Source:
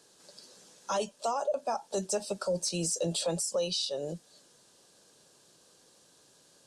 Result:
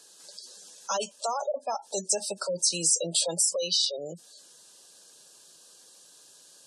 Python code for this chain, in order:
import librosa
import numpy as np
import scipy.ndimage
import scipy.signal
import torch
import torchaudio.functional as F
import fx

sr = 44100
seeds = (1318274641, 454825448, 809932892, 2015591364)

y = fx.tilt_eq(x, sr, slope=2.5)
y = fx.spec_gate(y, sr, threshold_db=-20, keep='strong')
y = y * 10.0 ** (2.0 / 20.0)